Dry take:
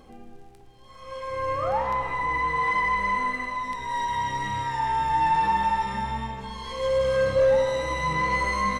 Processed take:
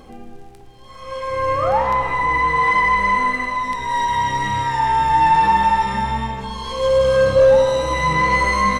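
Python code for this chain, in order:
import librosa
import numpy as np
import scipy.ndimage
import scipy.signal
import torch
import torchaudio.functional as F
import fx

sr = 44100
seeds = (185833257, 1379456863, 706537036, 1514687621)

y = fx.peak_eq(x, sr, hz=2000.0, db=-9.5, octaves=0.25, at=(6.44, 7.93))
y = F.gain(torch.from_numpy(y), 8.0).numpy()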